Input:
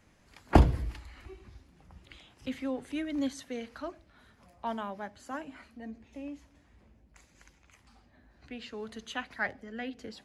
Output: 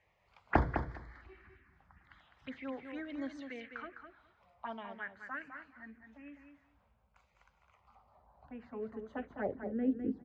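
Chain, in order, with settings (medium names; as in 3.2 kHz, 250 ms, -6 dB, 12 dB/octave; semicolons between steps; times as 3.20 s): RIAA curve playback; touch-sensitive phaser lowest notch 220 Hz, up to 2.7 kHz, full sweep at -25.5 dBFS; band-pass sweep 1.8 kHz -> 330 Hz, 7.31–10.02 s; feedback delay 206 ms, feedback 15%, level -7.5 dB; trim +8.5 dB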